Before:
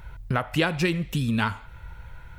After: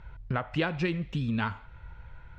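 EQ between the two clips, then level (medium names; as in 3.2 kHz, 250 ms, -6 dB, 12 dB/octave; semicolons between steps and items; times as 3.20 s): distance through air 170 m; -4.5 dB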